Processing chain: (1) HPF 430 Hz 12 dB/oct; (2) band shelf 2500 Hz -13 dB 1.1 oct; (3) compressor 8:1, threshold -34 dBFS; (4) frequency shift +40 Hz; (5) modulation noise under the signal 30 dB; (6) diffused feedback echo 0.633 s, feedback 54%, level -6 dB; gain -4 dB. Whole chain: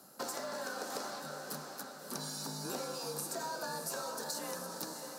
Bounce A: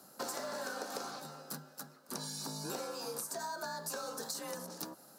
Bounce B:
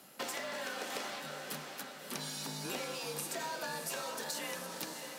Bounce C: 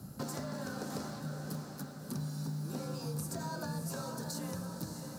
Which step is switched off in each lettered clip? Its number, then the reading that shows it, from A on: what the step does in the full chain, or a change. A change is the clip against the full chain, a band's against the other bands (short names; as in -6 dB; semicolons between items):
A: 6, echo-to-direct -4.5 dB to none; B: 2, 2 kHz band +4.5 dB; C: 1, 125 Hz band +17.0 dB